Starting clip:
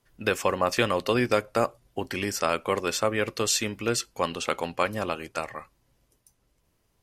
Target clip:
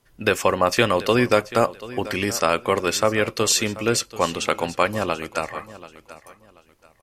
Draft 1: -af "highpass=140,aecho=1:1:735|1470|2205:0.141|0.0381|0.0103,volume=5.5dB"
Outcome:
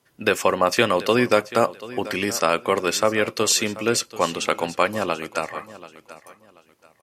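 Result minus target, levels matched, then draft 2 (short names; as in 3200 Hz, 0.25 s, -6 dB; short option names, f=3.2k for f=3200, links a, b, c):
125 Hz band -4.5 dB
-af "aecho=1:1:735|1470|2205:0.141|0.0381|0.0103,volume=5.5dB"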